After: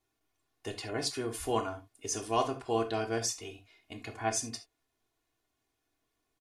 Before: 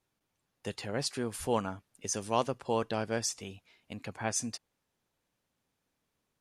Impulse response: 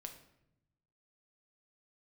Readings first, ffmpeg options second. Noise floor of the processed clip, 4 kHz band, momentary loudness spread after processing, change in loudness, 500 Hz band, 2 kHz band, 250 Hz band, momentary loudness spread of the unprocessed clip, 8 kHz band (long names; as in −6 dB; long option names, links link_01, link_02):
−82 dBFS, +1.0 dB, 14 LU, +0.5 dB, 0.0 dB, 0.0 dB, −1.0 dB, 13 LU, 0.0 dB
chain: -filter_complex "[0:a]aecho=1:1:2.8:0.88[link_01];[1:a]atrim=start_sample=2205,atrim=end_sample=3969[link_02];[link_01][link_02]afir=irnorm=-1:irlink=0,volume=3dB"